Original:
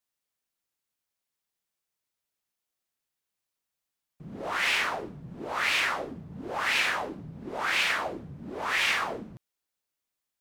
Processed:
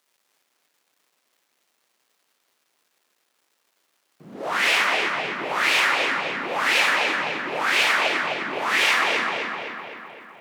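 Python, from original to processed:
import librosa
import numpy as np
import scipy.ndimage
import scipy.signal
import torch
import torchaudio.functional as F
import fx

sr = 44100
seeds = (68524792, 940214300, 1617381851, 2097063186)

y = fx.dmg_crackle(x, sr, seeds[0], per_s=540.0, level_db=-61.0)
y = scipy.signal.sosfilt(scipy.signal.butter(2, 280.0, 'highpass', fs=sr, output='sos'), y)
y = fx.echo_filtered(y, sr, ms=256, feedback_pct=60, hz=4300.0, wet_db=-3)
y = F.gain(torch.from_numpy(y), 6.0).numpy()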